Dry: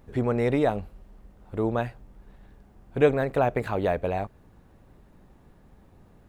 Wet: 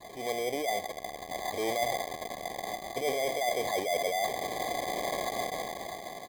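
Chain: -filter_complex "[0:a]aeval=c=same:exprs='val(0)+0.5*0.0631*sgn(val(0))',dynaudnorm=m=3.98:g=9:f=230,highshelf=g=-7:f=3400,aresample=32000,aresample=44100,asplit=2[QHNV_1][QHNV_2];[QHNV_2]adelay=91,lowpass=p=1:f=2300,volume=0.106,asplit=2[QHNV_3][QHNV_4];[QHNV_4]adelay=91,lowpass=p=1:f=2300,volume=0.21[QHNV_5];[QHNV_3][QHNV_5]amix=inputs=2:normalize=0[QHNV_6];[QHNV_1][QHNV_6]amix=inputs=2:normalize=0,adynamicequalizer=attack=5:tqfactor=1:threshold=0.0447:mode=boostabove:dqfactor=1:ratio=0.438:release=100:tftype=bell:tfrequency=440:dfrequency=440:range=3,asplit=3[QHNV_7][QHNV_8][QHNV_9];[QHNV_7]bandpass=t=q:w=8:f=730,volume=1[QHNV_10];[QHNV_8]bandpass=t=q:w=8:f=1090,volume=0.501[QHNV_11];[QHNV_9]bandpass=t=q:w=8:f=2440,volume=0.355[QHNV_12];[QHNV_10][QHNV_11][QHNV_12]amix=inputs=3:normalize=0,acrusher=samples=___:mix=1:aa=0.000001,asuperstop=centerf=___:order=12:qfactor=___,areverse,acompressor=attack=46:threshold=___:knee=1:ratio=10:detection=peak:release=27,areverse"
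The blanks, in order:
16, 1400, 2.6, 0.02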